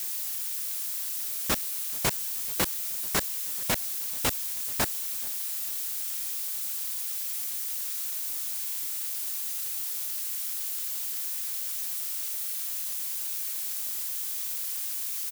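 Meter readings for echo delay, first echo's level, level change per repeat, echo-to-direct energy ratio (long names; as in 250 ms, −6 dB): 434 ms, −23.0 dB, −6.5 dB, −22.0 dB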